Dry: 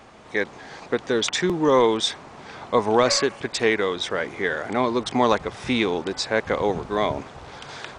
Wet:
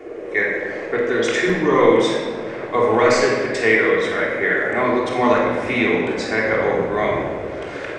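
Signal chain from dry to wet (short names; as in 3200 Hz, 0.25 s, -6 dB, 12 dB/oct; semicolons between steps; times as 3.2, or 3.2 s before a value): band noise 300–610 Hz -35 dBFS; graphic EQ 500/2000/4000 Hz +4/+11/-6 dB; shoebox room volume 1600 m³, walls mixed, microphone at 3.3 m; gain -6 dB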